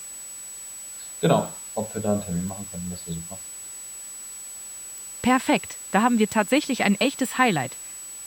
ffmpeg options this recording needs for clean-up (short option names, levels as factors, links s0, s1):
-af "adeclick=t=4,bandreject=f=7900:w=30,afftdn=nr=29:nf=-39"